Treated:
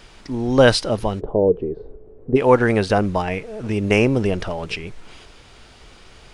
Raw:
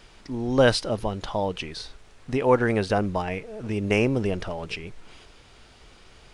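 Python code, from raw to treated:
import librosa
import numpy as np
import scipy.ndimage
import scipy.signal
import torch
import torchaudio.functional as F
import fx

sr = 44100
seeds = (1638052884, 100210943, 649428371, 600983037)

y = fx.lowpass_res(x, sr, hz=430.0, q=4.9, at=(1.19, 2.35), fade=0.02)
y = y * librosa.db_to_amplitude(5.5)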